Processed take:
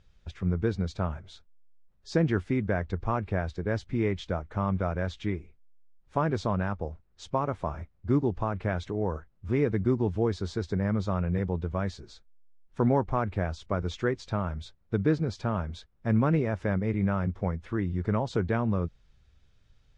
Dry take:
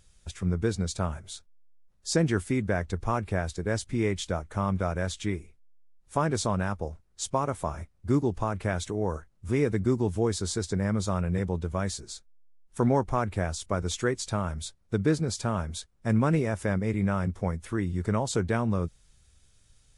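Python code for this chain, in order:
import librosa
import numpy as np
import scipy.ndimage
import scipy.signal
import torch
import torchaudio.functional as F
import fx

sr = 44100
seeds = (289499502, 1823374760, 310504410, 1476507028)

y = fx.air_absorb(x, sr, metres=220.0)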